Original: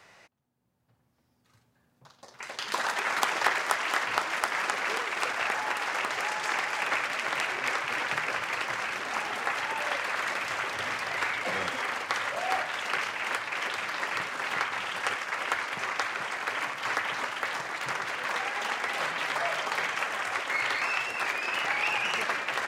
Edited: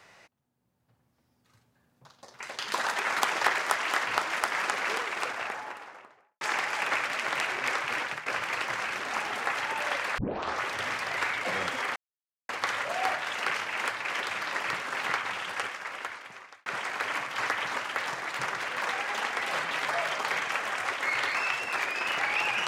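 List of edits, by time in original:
0:04.90–0:06.41: fade out and dull
0:07.97–0:08.26: fade out, to −13.5 dB
0:10.18: tape start 0.47 s
0:11.96: splice in silence 0.53 s
0:14.67–0:16.13: fade out

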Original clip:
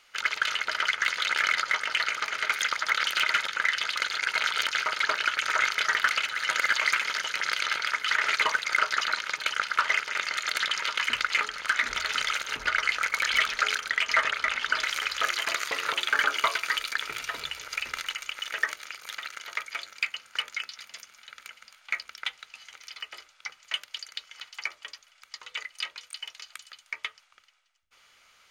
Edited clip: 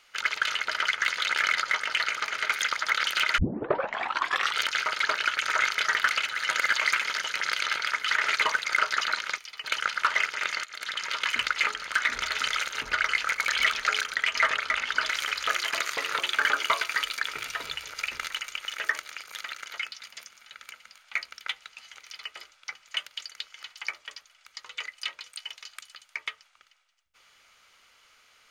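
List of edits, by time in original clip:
0:03.38: tape start 1.19 s
0:10.38–0:10.96: fade in, from −18.5 dB
0:19.52–0:20.55: remove
0:22.81–0:23.07: duplicate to 0:09.38

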